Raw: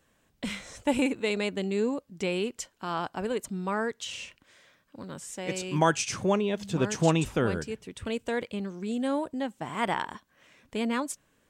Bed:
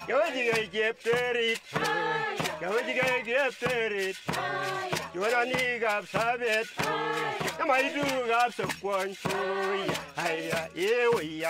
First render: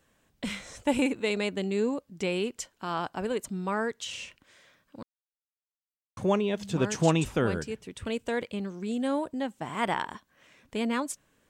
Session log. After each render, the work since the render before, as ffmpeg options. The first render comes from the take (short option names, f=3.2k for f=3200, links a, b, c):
-filter_complex "[0:a]asplit=3[a][b][c];[a]atrim=end=5.03,asetpts=PTS-STARTPTS,afade=t=out:st=5.026:d=0.004:c=hsin[d];[b]atrim=start=5.03:end=6.17,asetpts=PTS-STARTPTS,volume=0[e];[c]atrim=start=6.17,asetpts=PTS-STARTPTS,afade=t=in:d=0.004:c=hsin[f];[d][e][f]concat=n=3:v=0:a=1"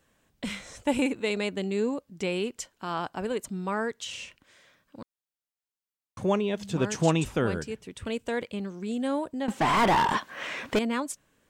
-filter_complex "[0:a]asettb=1/sr,asplit=3[a][b][c];[a]atrim=end=9.484[d];[b]atrim=start=9.48:end=10.79,asetpts=PTS-STARTPTS,afade=t=in:d=0.004:c=qsin,afade=t=out:st=1.306:d=0.004:c=qsin,asplit=2[e][f];[f]highpass=f=720:p=1,volume=34dB,asoftclip=type=tanh:threshold=-14.5dB[g];[e][g]amix=inputs=2:normalize=0,lowpass=f=2.2k:p=1,volume=-6dB[h];[c]atrim=start=10.786[i];[d][h]acrossfade=d=0.004:c1=hsin:c2=qsin[j];[j][i]acrossfade=d=0.004:c1=qsin:c2=hsin"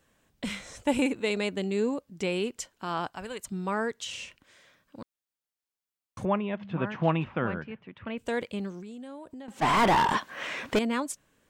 -filter_complex "[0:a]asettb=1/sr,asplit=3[a][b][c];[a]atrim=end=3.104[d];[b]atrim=start=3.1:end=3.52,asetpts=PTS-STARTPTS,afade=t=in:d=0.004:c=qsin,afade=t=out:st=0.416:d=0.004:c=qsin,equalizer=f=320:w=0.58:g=-11[e];[c]atrim=start=3.516[f];[d][e]acrossfade=d=0.004:c1=hsin:c2=qsin[g];[g][f]acrossfade=d=0.004:c1=qsin:c2=hsin,asettb=1/sr,asplit=3[h][i][j];[h]atrim=end=6.254[k];[i]atrim=start=6.25:end=8.18,asetpts=PTS-STARTPTS,afade=t=in:d=0.004:c=qsin,afade=t=out:st=1.926:d=0.004:c=qsin,highpass=130,equalizer=f=290:t=q:w=4:g=-5,equalizer=f=430:t=q:w=4:g=-9,equalizer=f=1.1k:t=q:w=4:g=3,lowpass=f=2.6k:w=0.5412,lowpass=f=2.6k:w=1.3066[l];[j]atrim=start=8.176[m];[k][l]acrossfade=d=0.004:c1=hsin:c2=qsin[n];[n][m]acrossfade=d=0.004:c1=qsin:c2=hsin,asplit=3[o][p][q];[o]afade=t=out:st=8.8:d=0.02[r];[p]acompressor=threshold=-40dB:ratio=6:attack=3.2:release=140:knee=1:detection=peak,afade=t=in:st=8.8:d=0.02,afade=t=out:st=9.61:d=0.02[s];[q]afade=t=in:st=9.61:d=0.02[t];[r][s][t]amix=inputs=3:normalize=0"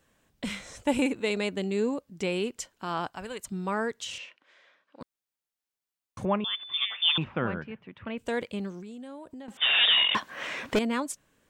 -filter_complex "[0:a]asettb=1/sr,asplit=3[a][b][c];[a]atrim=end=4.184[d];[b]atrim=start=4.18:end=5.01,asetpts=PTS-STARTPTS,afade=t=in:d=0.004:c=qsin,afade=t=out:st=0.826:d=0.004:c=qsin,highpass=460,lowpass=3.5k[e];[c]atrim=start=5.006[f];[d][e]acrossfade=d=0.004:c1=hsin:c2=qsin[g];[g][f]acrossfade=d=0.004:c1=qsin:c2=hsin,asettb=1/sr,asplit=3[h][i][j];[h]atrim=end=6.444[k];[i]atrim=start=6.44:end=7.18,asetpts=PTS-STARTPTS,afade=t=in:d=0.004:c=qsin,afade=t=out:st=0.736:d=0.004:c=qsin,lowpass=f=3.1k:t=q:w=0.5098,lowpass=f=3.1k:t=q:w=0.6013,lowpass=f=3.1k:t=q:w=0.9,lowpass=f=3.1k:t=q:w=2.563,afreqshift=-3700[l];[j]atrim=start=7.176[m];[k][l]acrossfade=d=0.004:c1=hsin:c2=qsin[n];[n][m]acrossfade=d=0.004:c1=qsin:c2=hsin,asettb=1/sr,asplit=3[o][p][q];[o]atrim=end=9.574[r];[p]atrim=start=9.57:end=10.15,asetpts=PTS-STARTPTS,afade=t=in:d=0.004:c=qsin,afade=t=out:st=0.576:d=0.004:c=qsin,lowpass=f=3.2k:t=q:w=0.5098,lowpass=f=3.2k:t=q:w=0.6013,lowpass=f=3.2k:t=q:w=0.9,lowpass=f=3.2k:t=q:w=2.563,afreqshift=-3800[s];[q]atrim=start=10.146[t];[r][s]acrossfade=d=0.004:c1=hsin:c2=qsin[u];[u][t]acrossfade=d=0.004:c1=qsin:c2=hsin"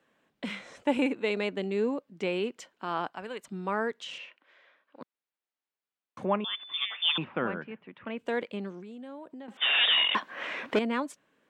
-filter_complex "[0:a]acrossover=split=170 3800:gain=0.0794 1 0.2[a][b][c];[a][b][c]amix=inputs=3:normalize=0"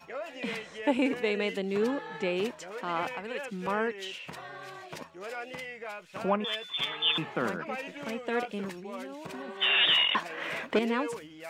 -filter_complex "[1:a]volume=-12.5dB[a];[0:a][a]amix=inputs=2:normalize=0"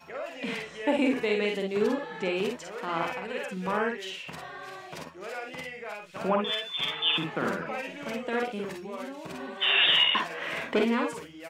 -af "aecho=1:1:48|60:0.631|0.398"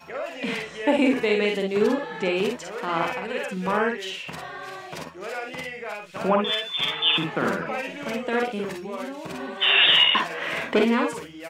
-af "volume=5dB"